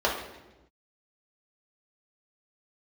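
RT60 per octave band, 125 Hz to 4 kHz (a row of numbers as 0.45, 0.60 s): 1.2, 1.4, 1.1, 0.95, 0.90, 0.85 s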